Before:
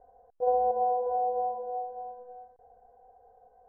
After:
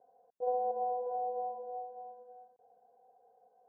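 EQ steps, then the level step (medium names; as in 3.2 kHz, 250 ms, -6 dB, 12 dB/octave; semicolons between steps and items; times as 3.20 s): high-pass 150 Hz 24 dB/octave; low-pass 1.2 kHz 6 dB/octave; -6.0 dB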